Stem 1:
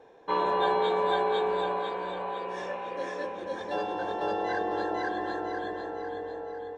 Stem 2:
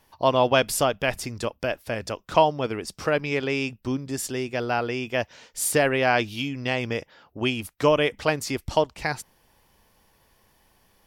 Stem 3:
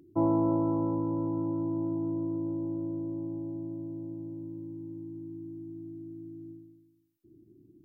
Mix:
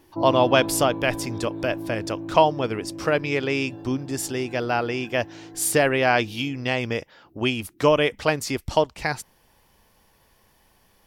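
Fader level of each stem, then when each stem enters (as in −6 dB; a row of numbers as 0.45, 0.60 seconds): −19.5, +1.5, −2.0 decibels; 0.00, 0.00, 0.00 seconds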